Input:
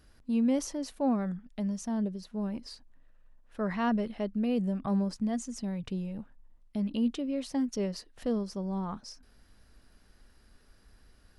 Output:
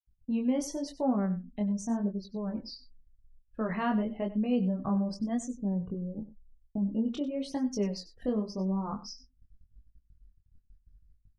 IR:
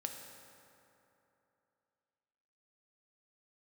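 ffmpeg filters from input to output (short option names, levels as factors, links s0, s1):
-filter_complex "[0:a]asettb=1/sr,asplit=3[s0][s1][s2];[s0]atrim=end=5.514[s3];[s1]atrim=start=5.51:end=7.06,asetpts=PTS-STARTPTS,afade=t=in:d=0.004:c=qsin,afade=t=out:st=1.546:d=0.004:c=qsin,lowpass=1200[s4];[s2]atrim=start=7.056[s5];[s3][s4]acrossfade=d=0.004:c1=hsin:c2=qsin[s6];[s6][s5]acrossfade=d=0.004:c1=qsin:c2=hsin,afftdn=nr=31:nf=-48,agate=range=0.00316:threshold=0.00141:ratio=16:detection=peak,asplit=2[s7][s8];[s8]acompressor=threshold=0.0178:ratio=16,volume=1.06[s9];[s7][s9]amix=inputs=2:normalize=0,flanger=delay=19.5:depth=4.6:speed=0.9,asplit=2[s10][s11];[s11]aecho=0:1:95:0.168[s12];[s10][s12]amix=inputs=2:normalize=0"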